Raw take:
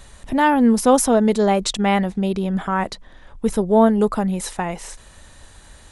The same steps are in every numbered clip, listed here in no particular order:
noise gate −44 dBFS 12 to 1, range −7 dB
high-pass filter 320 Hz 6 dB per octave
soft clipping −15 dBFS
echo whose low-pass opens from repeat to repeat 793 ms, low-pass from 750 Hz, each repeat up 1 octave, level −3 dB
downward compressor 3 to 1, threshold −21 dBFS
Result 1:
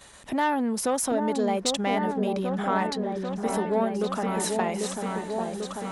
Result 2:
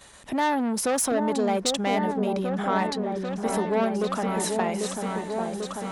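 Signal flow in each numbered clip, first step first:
downward compressor, then soft clipping, then echo whose low-pass opens from repeat to repeat, then noise gate, then high-pass filter
soft clipping, then downward compressor, then echo whose low-pass opens from repeat to repeat, then noise gate, then high-pass filter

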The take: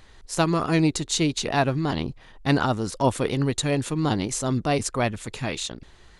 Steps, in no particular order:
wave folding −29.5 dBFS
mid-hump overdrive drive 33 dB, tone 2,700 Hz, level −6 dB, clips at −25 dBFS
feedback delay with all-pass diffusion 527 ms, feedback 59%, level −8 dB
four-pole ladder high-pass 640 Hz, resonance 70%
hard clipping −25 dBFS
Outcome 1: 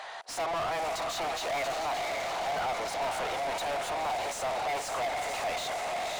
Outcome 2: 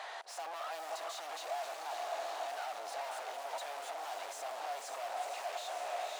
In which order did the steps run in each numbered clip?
hard clipping, then four-pole ladder high-pass, then wave folding, then feedback delay with all-pass diffusion, then mid-hump overdrive
hard clipping, then feedback delay with all-pass diffusion, then mid-hump overdrive, then wave folding, then four-pole ladder high-pass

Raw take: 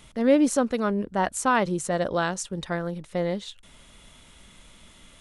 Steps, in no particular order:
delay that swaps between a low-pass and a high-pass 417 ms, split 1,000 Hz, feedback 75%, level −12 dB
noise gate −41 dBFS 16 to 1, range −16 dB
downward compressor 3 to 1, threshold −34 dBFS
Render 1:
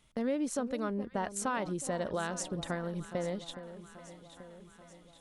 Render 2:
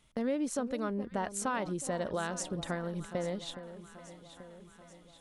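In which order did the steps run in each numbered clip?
downward compressor, then noise gate, then delay that swaps between a low-pass and a high-pass
noise gate, then downward compressor, then delay that swaps between a low-pass and a high-pass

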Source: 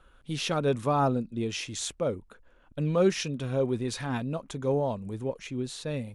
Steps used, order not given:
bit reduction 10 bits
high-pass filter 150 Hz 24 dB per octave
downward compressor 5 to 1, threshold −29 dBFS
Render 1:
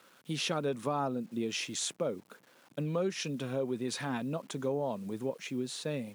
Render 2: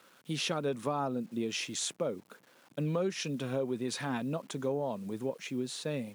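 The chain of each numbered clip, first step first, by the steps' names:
bit reduction, then downward compressor, then high-pass filter
bit reduction, then high-pass filter, then downward compressor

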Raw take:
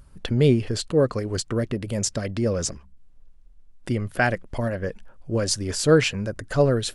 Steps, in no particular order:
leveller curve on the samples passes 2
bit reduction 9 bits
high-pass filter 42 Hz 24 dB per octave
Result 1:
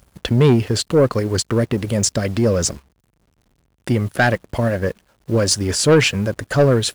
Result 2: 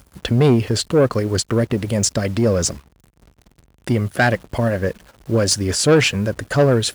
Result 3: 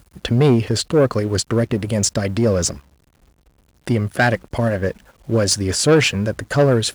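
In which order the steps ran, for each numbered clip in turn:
bit reduction, then high-pass filter, then leveller curve on the samples
bit reduction, then leveller curve on the samples, then high-pass filter
leveller curve on the samples, then bit reduction, then high-pass filter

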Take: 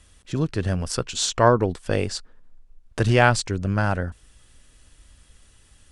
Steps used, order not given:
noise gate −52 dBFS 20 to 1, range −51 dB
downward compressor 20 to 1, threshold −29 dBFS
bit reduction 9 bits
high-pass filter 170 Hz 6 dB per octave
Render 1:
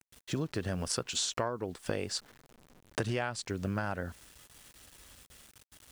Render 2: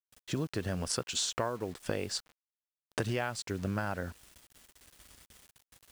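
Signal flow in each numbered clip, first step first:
noise gate, then bit reduction, then high-pass filter, then downward compressor
noise gate, then high-pass filter, then downward compressor, then bit reduction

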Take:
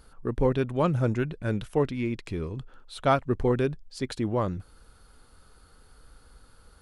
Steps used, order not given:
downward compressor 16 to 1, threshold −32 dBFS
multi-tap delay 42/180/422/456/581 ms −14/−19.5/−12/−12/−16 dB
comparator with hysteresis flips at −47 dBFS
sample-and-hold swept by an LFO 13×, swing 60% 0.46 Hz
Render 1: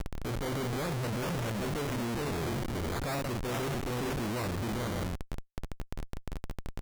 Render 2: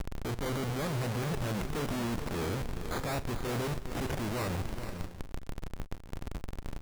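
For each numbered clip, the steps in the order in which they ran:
multi-tap delay, then sample-and-hold swept by an LFO, then comparator with hysteresis, then downward compressor
sample-and-hold swept by an LFO, then comparator with hysteresis, then downward compressor, then multi-tap delay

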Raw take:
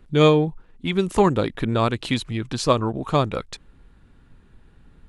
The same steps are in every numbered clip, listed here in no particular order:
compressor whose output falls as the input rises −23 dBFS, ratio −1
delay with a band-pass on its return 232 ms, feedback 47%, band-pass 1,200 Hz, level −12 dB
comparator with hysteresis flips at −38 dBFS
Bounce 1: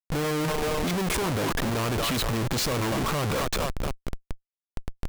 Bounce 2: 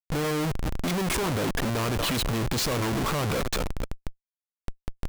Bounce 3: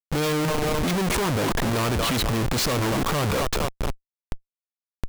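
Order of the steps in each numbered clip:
delay with a band-pass on its return, then compressor whose output falls as the input rises, then comparator with hysteresis
compressor whose output falls as the input rises, then delay with a band-pass on its return, then comparator with hysteresis
delay with a band-pass on its return, then comparator with hysteresis, then compressor whose output falls as the input rises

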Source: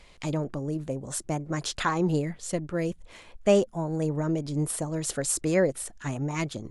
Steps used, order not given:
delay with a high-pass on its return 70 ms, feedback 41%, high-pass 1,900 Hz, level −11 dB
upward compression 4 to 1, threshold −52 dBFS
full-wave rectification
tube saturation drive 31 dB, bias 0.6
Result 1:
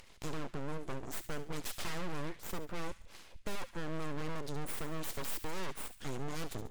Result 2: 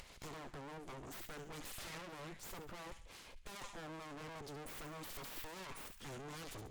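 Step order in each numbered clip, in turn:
upward compression, then tube saturation, then full-wave rectification, then delay with a high-pass on its return
full-wave rectification, then delay with a high-pass on its return, then tube saturation, then upward compression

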